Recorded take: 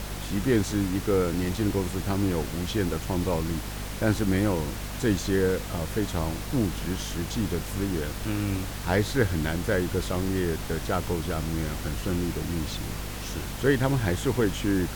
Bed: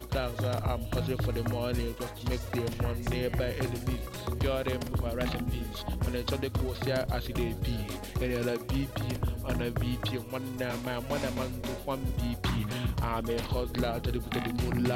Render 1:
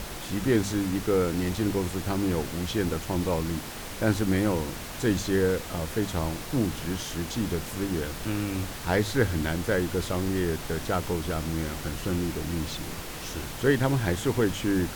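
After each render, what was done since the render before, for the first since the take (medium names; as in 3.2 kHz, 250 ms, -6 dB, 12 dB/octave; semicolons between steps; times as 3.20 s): de-hum 50 Hz, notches 5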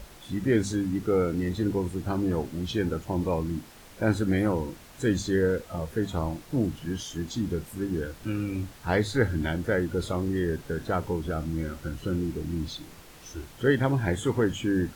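noise print and reduce 12 dB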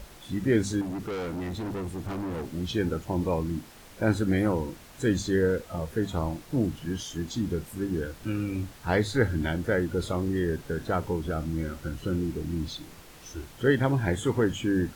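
0.81–2.49 s: overload inside the chain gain 30.5 dB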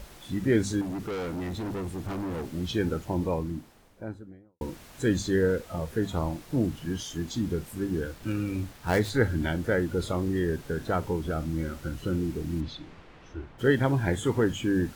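2.93–4.61 s: studio fade out; 8.11–9.10 s: dead-time distortion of 0.075 ms; 12.60–13.58 s: low-pass 3.9 kHz -> 1.8 kHz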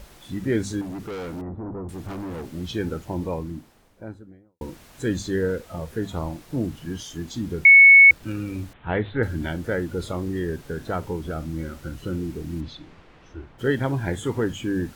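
1.41–1.89 s: low-pass 1.2 kHz 24 dB/octave; 7.65–8.11 s: bleep 2.21 kHz -6.5 dBFS; 8.73–9.23 s: steep low-pass 3.5 kHz 72 dB/octave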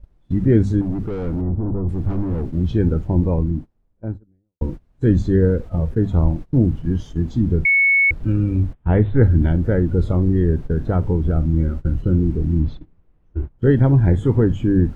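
gate -39 dBFS, range -23 dB; tilt EQ -4.5 dB/octave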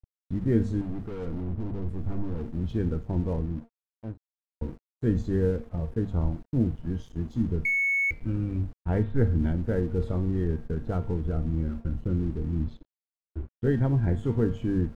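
feedback comb 230 Hz, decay 0.48 s, harmonics all, mix 70%; crossover distortion -49 dBFS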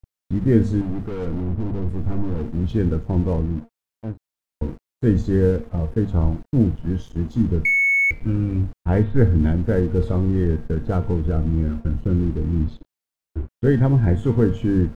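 trim +7.5 dB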